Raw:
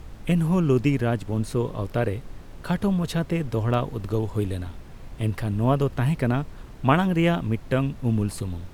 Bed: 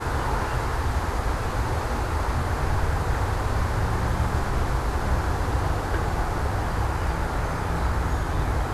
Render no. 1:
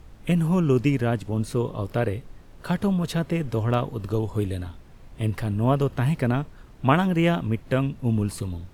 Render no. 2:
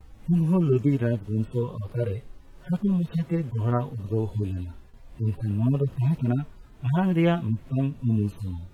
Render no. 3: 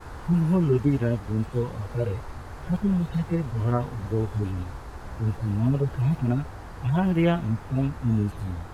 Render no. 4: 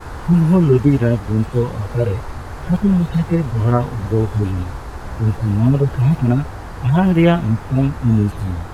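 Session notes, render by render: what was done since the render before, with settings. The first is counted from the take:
noise print and reduce 6 dB
harmonic-percussive separation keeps harmonic; gate with hold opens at -41 dBFS
add bed -14.5 dB
trim +9 dB

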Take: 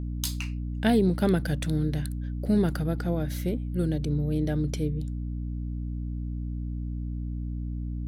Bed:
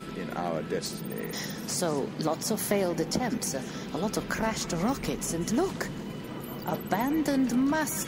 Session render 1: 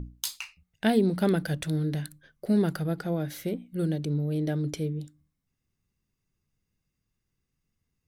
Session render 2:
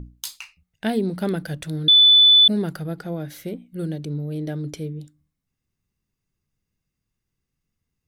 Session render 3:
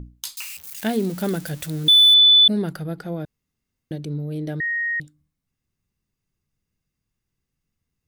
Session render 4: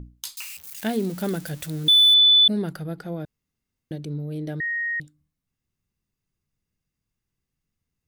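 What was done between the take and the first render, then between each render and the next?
hum notches 60/120/180/240/300 Hz
1.88–2.48 s: bleep 3.49 kHz -9 dBFS
0.37–2.14 s: zero-crossing glitches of -26 dBFS; 3.25–3.91 s: room tone; 4.60–5.00 s: bleep 1.87 kHz -21 dBFS
trim -2.5 dB

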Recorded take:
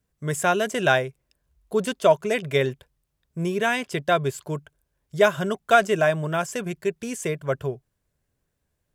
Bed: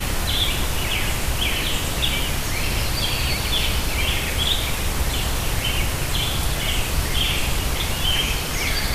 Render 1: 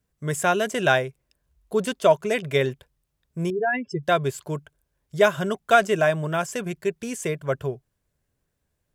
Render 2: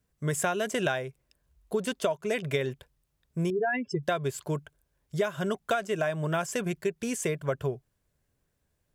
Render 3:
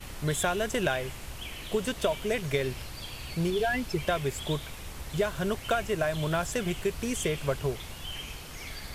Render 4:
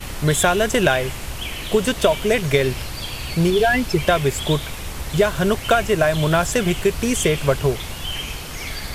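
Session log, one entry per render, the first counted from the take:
3.50–4.03 s: spectral contrast enhancement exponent 3.2
compression 16:1, threshold -24 dBFS, peak gain reduction 14 dB
add bed -18 dB
trim +11 dB

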